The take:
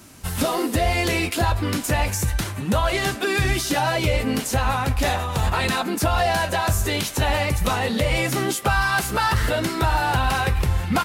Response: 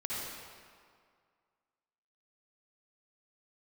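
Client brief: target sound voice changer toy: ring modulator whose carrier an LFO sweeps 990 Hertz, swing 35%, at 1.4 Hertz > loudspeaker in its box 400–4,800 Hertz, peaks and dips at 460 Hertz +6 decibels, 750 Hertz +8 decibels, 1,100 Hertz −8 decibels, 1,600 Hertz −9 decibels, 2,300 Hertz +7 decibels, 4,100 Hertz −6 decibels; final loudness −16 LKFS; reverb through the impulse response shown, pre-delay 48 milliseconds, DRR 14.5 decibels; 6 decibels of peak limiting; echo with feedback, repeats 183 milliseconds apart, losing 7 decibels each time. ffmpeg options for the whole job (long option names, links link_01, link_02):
-filter_complex "[0:a]alimiter=limit=-14dB:level=0:latency=1,aecho=1:1:183|366|549|732|915:0.447|0.201|0.0905|0.0407|0.0183,asplit=2[link_01][link_02];[1:a]atrim=start_sample=2205,adelay=48[link_03];[link_02][link_03]afir=irnorm=-1:irlink=0,volume=-18.5dB[link_04];[link_01][link_04]amix=inputs=2:normalize=0,aeval=exprs='val(0)*sin(2*PI*990*n/s+990*0.35/1.4*sin(2*PI*1.4*n/s))':channel_layout=same,highpass=400,equalizer=frequency=460:width_type=q:width=4:gain=6,equalizer=frequency=750:width_type=q:width=4:gain=8,equalizer=frequency=1100:width_type=q:width=4:gain=-8,equalizer=frequency=1600:width_type=q:width=4:gain=-9,equalizer=frequency=2300:width_type=q:width=4:gain=7,equalizer=frequency=4100:width_type=q:width=4:gain=-6,lowpass=frequency=4800:width=0.5412,lowpass=frequency=4800:width=1.3066,volume=8.5dB"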